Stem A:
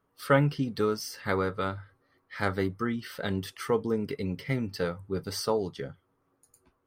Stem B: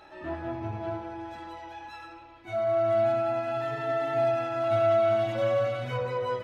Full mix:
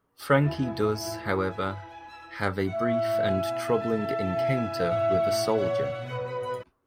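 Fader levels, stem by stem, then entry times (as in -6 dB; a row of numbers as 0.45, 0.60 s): +1.0, -2.0 dB; 0.00, 0.20 s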